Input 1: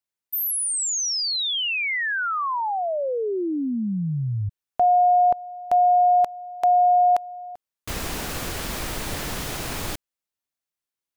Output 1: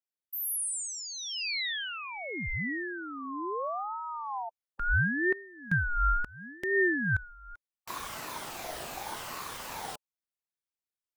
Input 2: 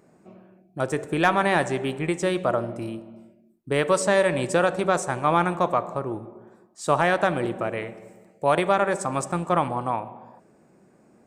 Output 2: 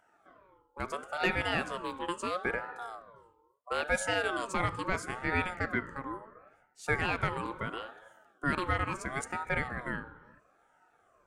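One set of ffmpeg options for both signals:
-af "afftfilt=real='re*pow(10,8/40*sin(2*PI*(1*log(max(b,1)*sr/1024/100)/log(2)-(-2.7)*(pts-256)/sr)))':imag='im*pow(10,8/40*sin(2*PI*(1*log(max(b,1)*sr/1024/100)/log(2)-(-2.7)*(pts-256)/sr)))':win_size=1024:overlap=0.75,aeval=exprs='val(0)*sin(2*PI*890*n/s+890*0.25/0.74*sin(2*PI*0.74*n/s))':c=same,volume=0.398"

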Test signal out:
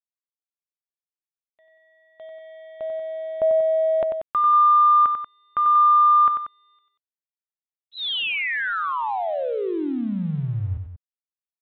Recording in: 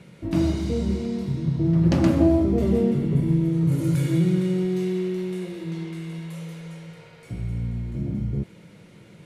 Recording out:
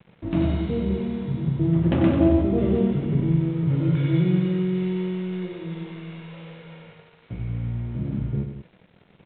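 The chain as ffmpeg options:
-af "aresample=8000,aeval=exprs='sgn(val(0))*max(abs(val(0))-0.00422,0)':c=same,aresample=44100,aecho=1:1:93.29|186.6:0.447|0.282"

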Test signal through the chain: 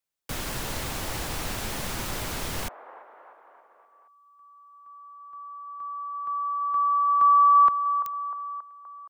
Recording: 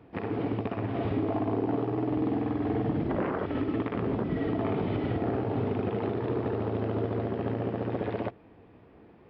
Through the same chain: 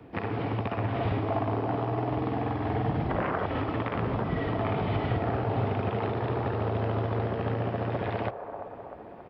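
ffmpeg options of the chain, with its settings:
-filter_complex "[0:a]acrossover=split=170|570|1300[s0][s1][s2][s3];[s1]acompressor=threshold=0.00631:ratio=6[s4];[s2]aecho=1:1:340|646|921.4|1169|1392:0.631|0.398|0.251|0.158|0.1[s5];[s0][s4][s5][s3]amix=inputs=4:normalize=0,volume=1.78"

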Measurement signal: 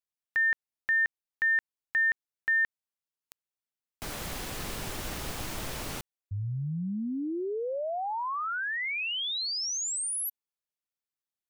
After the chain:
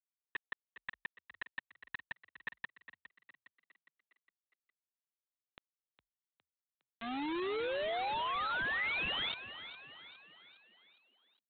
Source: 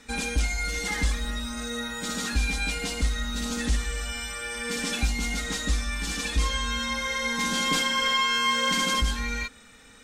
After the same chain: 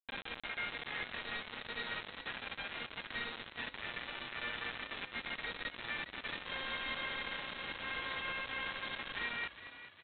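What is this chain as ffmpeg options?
-filter_complex "[0:a]aemphasis=mode=production:type=75kf,afftfilt=real='re*lt(hypot(re,im),0.501)':imag='im*lt(hypot(re,im),0.501)':win_size=1024:overlap=0.75,highpass=f=440:p=1,equalizer=f=1800:t=o:w=0.54:g=11,alimiter=limit=0.178:level=0:latency=1:release=37,acompressor=threshold=0.0224:ratio=8:attack=0.23:release=33:knee=1:detection=rms,aresample=8000,acrusher=bits=5:mix=0:aa=0.000001,aresample=44100,asplit=6[s0][s1][s2][s3][s4][s5];[s1]adelay=410,afreqshift=39,volume=0.224[s6];[s2]adelay=820,afreqshift=78,volume=0.112[s7];[s3]adelay=1230,afreqshift=117,volume=0.0562[s8];[s4]adelay=1640,afreqshift=156,volume=0.0279[s9];[s5]adelay=2050,afreqshift=195,volume=0.014[s10];[s0][s6][s7][s8][s9][s10]amix=inputs=6:normalize=0,volume=0.708"

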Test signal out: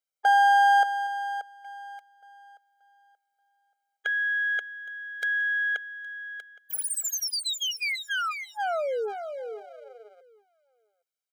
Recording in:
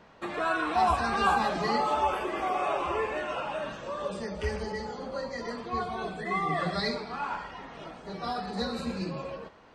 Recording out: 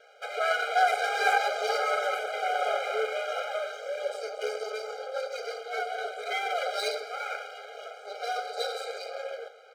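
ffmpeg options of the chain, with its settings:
-filter_complex "[0:a]asplit=2[s0][s1];[s1]adelay=816.3,volume=0.0891,highshelf=f=4000:g=-18.4[s2];[s0][s2]amix=inputs=2:normalize=0,aeval=exprs='max(val(0),0)':c=same,afftfilt=real='re*eq(mod(floor(b*sr/1024/410),2),1)':imag='im*eq(mod(floor(b*sr/1024/410),2),1)':win_size=1024:overlap=0.75,volume=2.51"

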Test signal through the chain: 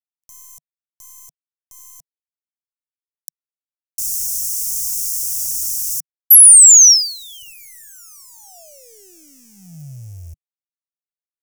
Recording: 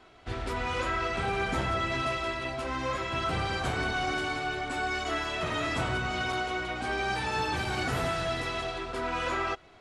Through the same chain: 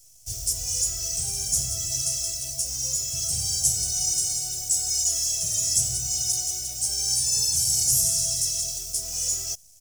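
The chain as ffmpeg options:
-af "aexciter=amount=8.1:drive=7.8:freq=3500,acrusher=bits=7:dc=4:mix=0:aa=0.000001,firequalizer=gain_entry='entry(150,0);entry(220,-19);entry(690,-12);entry(1000,-30);entry(2500,-13);entry(3900,-20);entry(5600,6)':delay=0.05:min_phase=1,volume=0.841"

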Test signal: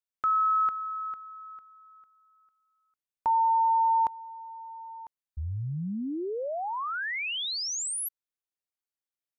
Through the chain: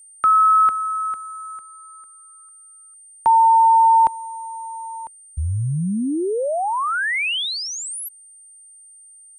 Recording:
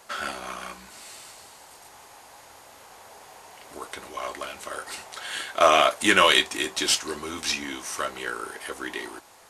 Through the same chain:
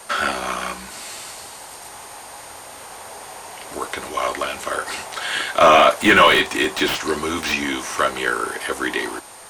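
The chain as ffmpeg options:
-filter_complex "[0:a]aeval=exprs='val(0)+0.002*sin(2*PI*8800*n/s)':c=same,apsyclip=5.96,acrossover=split=350|530|2800[s0][s1][s2][s3];[s3]aeval=exprs='0.299*(abs(mod(val(0)/0.299+3,4)-2)-1)':c=same[s4];[s0][s1][s2][s4]amix=inputs=4:normalize=0,acrossover=split=3300[s5][s6];[s6]acompressor=threshold=0.0562:ratio=4:attack=1:release=60[s7];[s5][s7]amix=inputs=2:normalize=0,volume=0.562"

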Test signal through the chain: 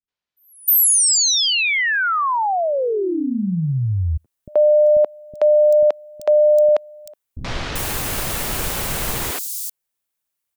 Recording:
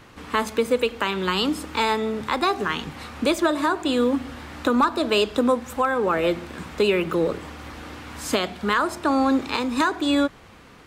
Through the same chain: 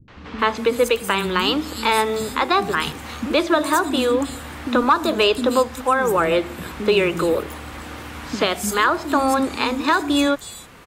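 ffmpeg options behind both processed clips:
-filter_complex "[0:a]highshelf=f=6700:g=6.5,acrossover=split=260|5100[s0][s1][s2];[s1]adelay=80[s3];[s2]adelay=390[s4];[s0][s3][s4]amix=inputs=3:normalize=0,volume=1.58"

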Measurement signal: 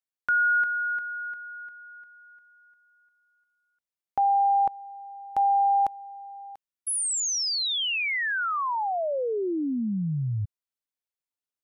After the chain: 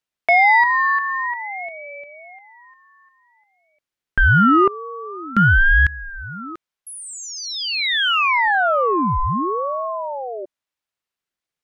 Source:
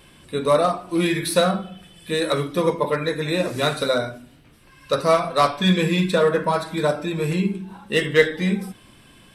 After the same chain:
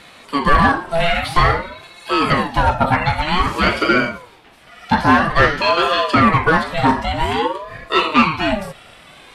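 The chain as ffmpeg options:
-filter_complex "[0:a]asplit=2[s0][s1];[s1]highpass=f=720:p=1,volume=7.94,asoftclip=type=tanh:threshold=0.75[s2];[s0][s2]amix=inputs=2:normalize=0,lowpass=f=2700:p=1,volume=0.501,acrossover=split=3500[s3][s4];[s4]acompressor=threshold=0.0178:ratio=4:attack=1:release=60[s5];[s3][s5]amix=inputs=2:normalize=0,aeval=exprs='val(0)*sin(2*PI*600*n/s+600*0.45/0.51*sin(2*PI*0.51*n/s))':c=same,volume=1.41"

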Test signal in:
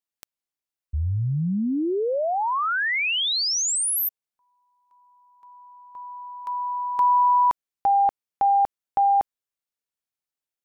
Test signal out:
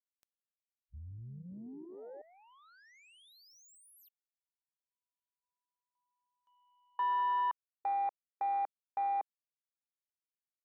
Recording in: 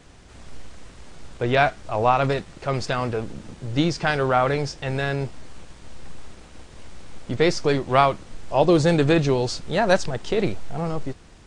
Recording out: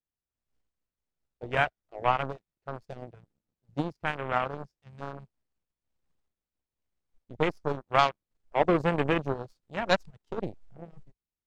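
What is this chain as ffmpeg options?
-af "aeval=exprs='0.596*(cos(1*acos(clip(val(0)/0.596,-1,1)))-cos(1*PI/2))+0.00473*(cos(2*acos(clip(val(0)/0.596,-1,1)))-cos(2*PI/2))+0.0944*(cos(3*acos(clip(val(0)/0.596,-1,1)))-cos(3*PI/2))+0.0422*(cos(7*acos(clip(val(0)/0.596,-1,1)))-cos(7*PI/2))':c=same,afwtdn=0.0282,volume=0.708"

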